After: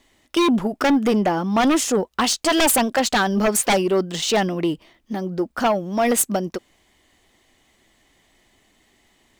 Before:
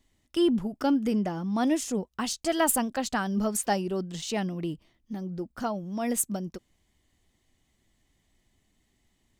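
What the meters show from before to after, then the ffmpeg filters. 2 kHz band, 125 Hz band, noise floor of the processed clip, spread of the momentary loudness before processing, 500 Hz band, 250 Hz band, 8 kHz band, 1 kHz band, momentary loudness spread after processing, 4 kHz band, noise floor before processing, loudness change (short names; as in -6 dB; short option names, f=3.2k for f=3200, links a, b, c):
+12.0 dB, +6.0 dB, -63 dBFS, 11 LU, +10.0 dB, +6.5 dB, +8.5 dB, +10.5 dB, 9 LU, +12.5 dB, -73 dBFS, +8.5 dB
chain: -af "bass=f=250:g=-13,treble=f=4k:g=-5,aeval=exprs='0.224*sin(PI/2*3.98*val(0)/0.224)':c=same" -ar 44100 -c:a adpcm_ima_wav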